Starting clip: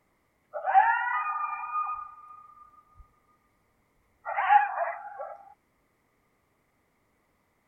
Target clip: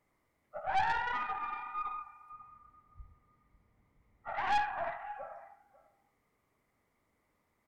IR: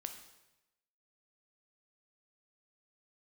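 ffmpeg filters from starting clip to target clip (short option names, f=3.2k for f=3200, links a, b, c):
-filter_complex "[0:a]aecho=1:1:545:0.106[a];[1:a]atrim=start_sample=2205,atrim=end_sample=6174[b];[a][b]afir=irnorm=-1:irlink=0,aeval=exprs='(tanh(15.8*val(0)+0.5)-tanh(0.5))/15.8':c=same,asettb=1/sr,asplit=3[c][d][e];[c]atrim=end=2.324[f];[d]atrim=start=2.32:end=4.29,asetpts=PTS-STARTPTS,afade=t=in:d=0.004:c=qsin,afade=t=out:st=1.966:d=0.004:c=qsin,bass=f=250:g=9,treble=f=4k:g=-7[g];[e]atrim=start=4.286[h];[f][g]acrossfade=d=0.004:c1=hsin:c2=qsin[i];[i][h]acrossfade=d=0.004:c1=qsin:c2=hsin,volume=-1.5dB"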